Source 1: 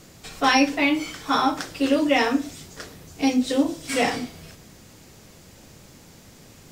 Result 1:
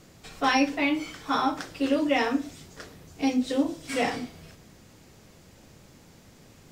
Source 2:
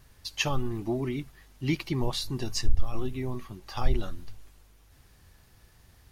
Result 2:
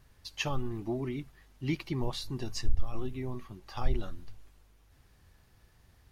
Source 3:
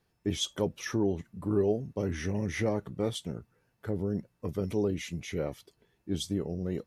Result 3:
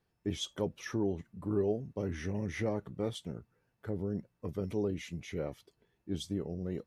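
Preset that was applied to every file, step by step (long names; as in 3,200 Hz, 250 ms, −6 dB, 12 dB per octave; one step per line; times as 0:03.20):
high-shelf EQ 4,200 Hz −5 dB
level −4 dB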